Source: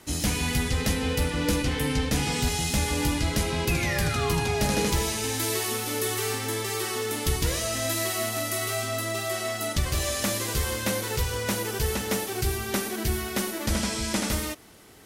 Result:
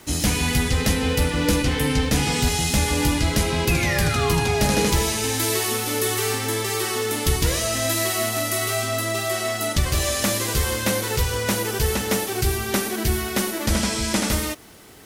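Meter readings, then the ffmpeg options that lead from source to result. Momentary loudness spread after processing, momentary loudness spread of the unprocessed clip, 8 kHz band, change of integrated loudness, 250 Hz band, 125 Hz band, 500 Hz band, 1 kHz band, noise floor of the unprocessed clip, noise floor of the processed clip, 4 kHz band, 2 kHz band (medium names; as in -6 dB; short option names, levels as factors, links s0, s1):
3 LU, 3 LU, +5.0 dB, +5.0 dB, +5.0 dB, +5.0 dB, +5.0 dB, +5.0 dB, -34 dBFS, -29 dBFS, +5.0 dB, +5.0 dB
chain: -af "acrusher=bits=9:mix=0:aa=0.000001,volume=1.78"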